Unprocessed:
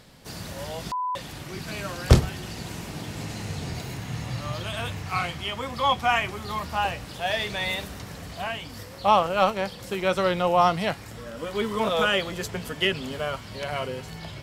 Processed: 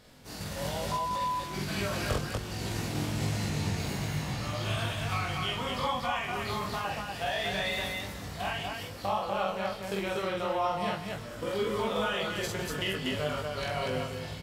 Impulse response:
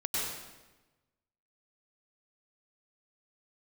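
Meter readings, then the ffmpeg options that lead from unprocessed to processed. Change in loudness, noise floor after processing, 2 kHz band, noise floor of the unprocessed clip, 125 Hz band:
−5.5 dB, −41 dBFS, −4.5 dB, −41 dBFS, −4.5 dB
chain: -filter_complex "[0:a]agate=range=-7dB:threshold=-35dB:ratio=16:detection=peak,acompressor=threshold=-34dB:ratio=5,asplit=2[link_01][link_02];[link_02]adelay=20,volume=-4dB[link_03];[link_01][link_03]amix=inputs=2:normalize=0,aecho=1:1:46.65|242:0.891|0.794,asplit=2[link_04][link_05];[1:a]atrim=start_sample=2205[link_06];[link_05][link_06]afir=irnorm=-1:irlink=0,volume=-18.5dB[link_07];[link_04][link_07]amix=inputs=2:normalize=0,volume=-1dB"

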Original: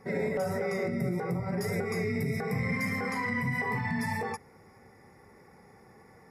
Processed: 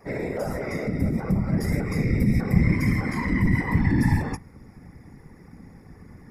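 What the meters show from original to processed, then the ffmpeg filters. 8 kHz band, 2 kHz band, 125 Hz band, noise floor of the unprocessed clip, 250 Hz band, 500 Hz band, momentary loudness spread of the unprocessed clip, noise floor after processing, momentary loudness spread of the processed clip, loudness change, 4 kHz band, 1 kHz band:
+2.0 dB, +1.5 dB, +11.0 dB, −57 dBFS, +9.5 dB, 0.0 dB, 2 LU, −49 dBFS, 8 LU, +7.0 dB, +2.0 dB, 0.0 dB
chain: -af "asubboost=boost=7.5:cutoff=200,bandreject=frequency=212.5:width_type=h:width=4,bandreject=frequency=425:width_type=h:width=4,bandreject=frequency=637.5:width_type=h:width=4,bandreject=frequency=850:width_type=h:width=4,bandreject=frequency=1062.5:width_type=h:width=4,bandreject=frequency=1275:width_type=h:width=4,afftfilt=real='hypot(re,im)*cos(2*PI*random(0))':imag='hypot(re,im)*sin(2*PI*random(1))':win_size=512:overlap=0.75,volume=8dB"

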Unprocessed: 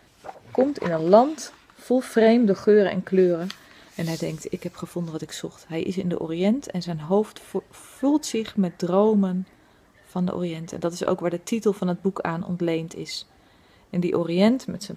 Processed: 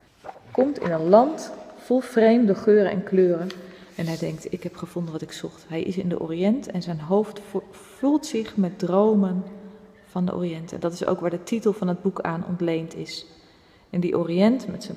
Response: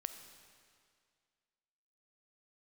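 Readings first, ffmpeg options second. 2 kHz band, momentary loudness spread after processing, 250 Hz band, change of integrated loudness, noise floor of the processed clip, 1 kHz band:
−1.0 dB, 16 LU, 0.0 dB, 0.0 dB, −52 dBFS, 0.0 dB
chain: -filter_complex "[0:a]adynamicequalizer=threshold=0.00447:dfrequency=3100:dqfactor=1.4:tfrequency=3100:tqfactor=1.4:attack=5:release=100:ratio=0.375:range=3:mode=cutabove:tftype=bell,asplit=2[link_01][link_02];[1:a]atrim=start_sample=2205,lowpass=5800[link_03];[link_02][link_03]afir=irnorm=-1:irlink=0,volume=-1.5dB[link_04];[link_01][link_04]amix=inputs=2:normalize=0,volume=-4dB"

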